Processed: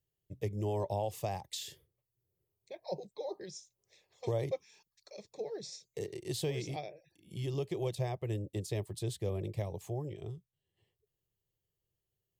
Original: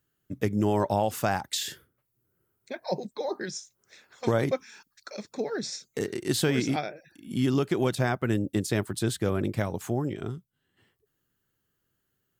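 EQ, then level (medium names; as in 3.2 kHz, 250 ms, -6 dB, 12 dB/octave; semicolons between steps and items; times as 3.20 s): peaking EQ 800 Hz -6 dB 1.6 oct; treble shelf 3.1 kHz -8.5 dB; static phaser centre 600 Hz, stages 4; -3.0 dB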